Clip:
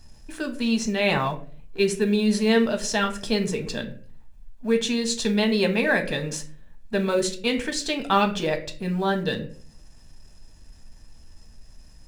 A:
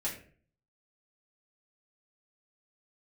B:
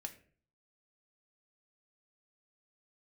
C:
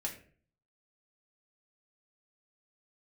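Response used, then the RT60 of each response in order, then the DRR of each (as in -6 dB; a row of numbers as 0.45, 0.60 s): B; 0.45, 0.45, 0.45 s; -6.5, 4.5, -1.0 dB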